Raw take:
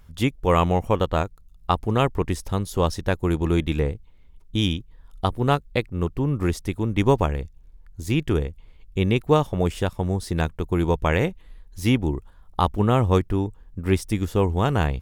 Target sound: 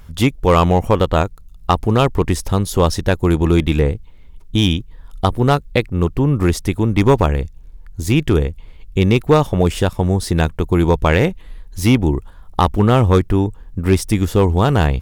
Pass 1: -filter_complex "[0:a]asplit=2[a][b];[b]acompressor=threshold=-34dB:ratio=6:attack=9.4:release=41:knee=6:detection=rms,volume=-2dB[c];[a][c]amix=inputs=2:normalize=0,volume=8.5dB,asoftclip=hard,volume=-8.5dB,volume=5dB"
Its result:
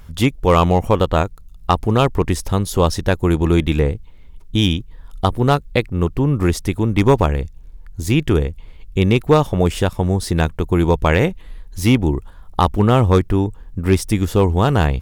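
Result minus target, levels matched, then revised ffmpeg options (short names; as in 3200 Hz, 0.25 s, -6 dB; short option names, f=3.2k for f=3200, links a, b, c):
compressor: peak gain reduction +6 dB
-filter_complex "[0:a]asplit=2[a][b];[b]acompressor=threshold=-26.5dB:ratio=6:attack=9.4:release=41:knee=6:detection=rms,volume=-2dB[c];[a][c]amix=inputs=2:normalize=0,volume=8.5dB,asoftclip=hard,volume=-8.5dB,volume=5dB"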